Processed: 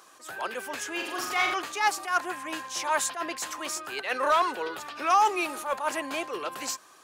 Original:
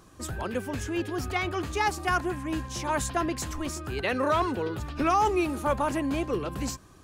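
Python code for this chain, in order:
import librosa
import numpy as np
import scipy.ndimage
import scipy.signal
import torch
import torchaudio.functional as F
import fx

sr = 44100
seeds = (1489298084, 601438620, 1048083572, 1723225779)

p1 = scipy.signal.sosfilt(scipy.signal.butter(2, 700.0, 'highpass', fs=sr, output='sos'), x)
p2 = fx.room_flutter(p1, sr, wall_m=7.3, rt60_s=0.61, at=(0.94, 1.54))
p3 = np.clip(p2, -10.0 ** (-29.0 / 20.0), 10.0 ** (-29.0 / 20.0))
p4 = p2 + (p3 * librosa.db_to_amplitude(-11.0))
p5 = fx.attack_slew(p4, sr, db_per_s=140.0)
y = p5 * librosa.db_to_amplitude(3.0)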